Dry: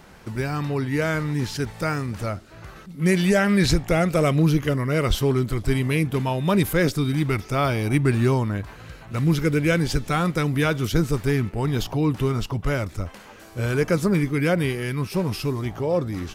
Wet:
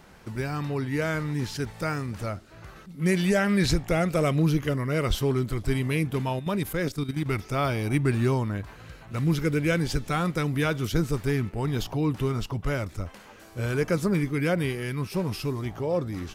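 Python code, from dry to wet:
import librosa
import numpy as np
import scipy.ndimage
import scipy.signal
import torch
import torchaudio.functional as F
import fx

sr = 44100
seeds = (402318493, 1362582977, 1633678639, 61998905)

y = fx.level_steps(x, sr, step_db=11, at=(6.39, 7.26))
y = F.gain(torch.from_numpy(y), -4.0).numpy()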